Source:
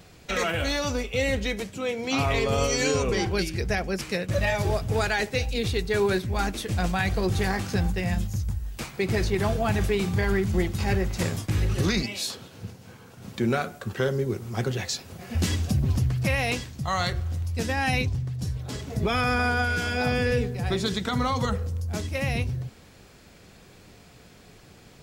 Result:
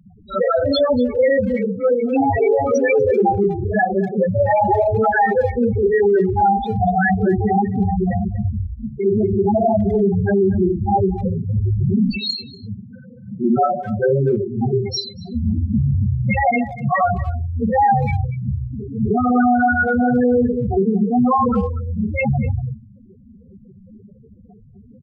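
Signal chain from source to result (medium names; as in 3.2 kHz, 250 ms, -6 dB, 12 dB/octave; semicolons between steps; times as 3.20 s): Schroeder reverb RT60 0.46 s, combs from 29 ms, DRR -9.5 dB; dynamic bell 800 Hz, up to +5 dB, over -31 dBFS, Q 2.2; loudest bins only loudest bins 4; peak limiter -13.5 dBFS, peak gain reduction 9 dB; bass shelf 93 Hz -8 dB; speakerphone echo 240 ms, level -16 dB; trim +5 dB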